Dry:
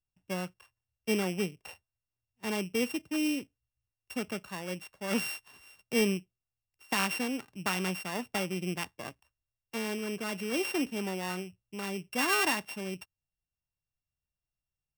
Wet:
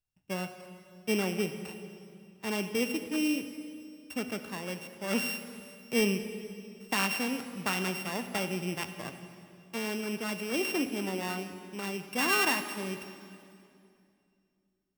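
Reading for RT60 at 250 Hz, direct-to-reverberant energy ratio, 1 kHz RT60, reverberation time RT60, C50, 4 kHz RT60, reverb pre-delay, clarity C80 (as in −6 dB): 3.0 s, 8.5 dB, 2.3 s, 2.5 s, 9.0 dB, 2.2 s, 29 ms, 9.5 dB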